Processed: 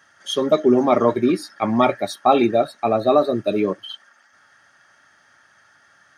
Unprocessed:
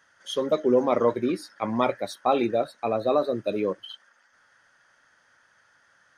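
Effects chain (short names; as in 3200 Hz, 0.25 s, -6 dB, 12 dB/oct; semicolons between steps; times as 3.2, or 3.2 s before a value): notch comb 500 Hz; gain +8 dB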